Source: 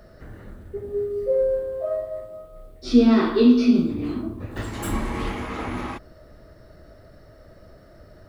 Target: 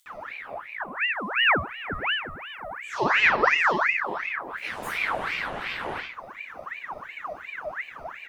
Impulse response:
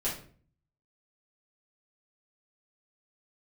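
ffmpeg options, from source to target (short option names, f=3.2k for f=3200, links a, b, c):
-filter_complex "[0:a]acompressor=mode=upward:threshold=-32dB:ratio=2.5,acrossover=split=5200[a][b];[a]adelay=60[c];[c][b]amix=inputs=2:normalize=0,flanger=delay=6.9:depth=9.2:regen=60:speed=0.27:shape=sinusoidal[d];[1:a]atrim=start_sample=2205[e];[d][e]afir=irnorm=-1:irlink=0,aeval=exprs='val(0)*sin(2*PI*1500*n/s+1500*0.6/2.8*sin(2*PI*2.8*n/s))':c=same,volume=-3dB"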